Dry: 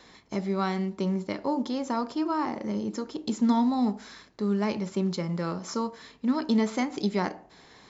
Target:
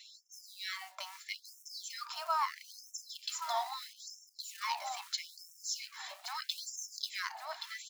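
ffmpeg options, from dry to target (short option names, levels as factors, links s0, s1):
-filter_complex "[0:a]asplit=2[s0][s1];[s1]aecho=0:1:1124|2248|3372:0.398|0.0717|0.0129[s2];[s0][s2]amix=inputs=2:normalize=0,flanger=delay=0.7:depth=2.3:regen=52:speed=0.45:shape=sinusoidal,acrossover=split=160|3000[s3][s4][s5];[s4]acompressor=threshold=0.0141:ratio=2[s6];[s3][s6][s5]amix=inputs=3:normalize=0,acrusher=bits=7:mode=log:mix=0:aa=0.000001,afftfilt=real='re*gte(b*sr/1024,580*pow(5400/580,0.5+0.5*sin(2*PI*0.77*pts/sr)))':imag='im*gte(b*sr/1024,580*pow(5400/580,0.5+0.5*sin(2*PI*0.77*pts/sr)))':win_size=1024:overlap=0.75,volume=2.24"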